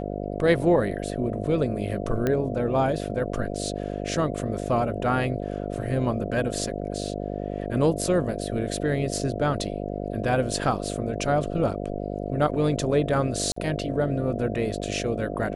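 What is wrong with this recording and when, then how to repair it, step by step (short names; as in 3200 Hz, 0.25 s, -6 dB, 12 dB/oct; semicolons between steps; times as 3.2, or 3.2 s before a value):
buzz 50 Hz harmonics 14 -31 dBFS
2.27 pop -12 dBFS
13.52–13.56 gap 44 ms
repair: de-click; de-hum 50 Hz, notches 14; interpolate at 13.52, 44 ms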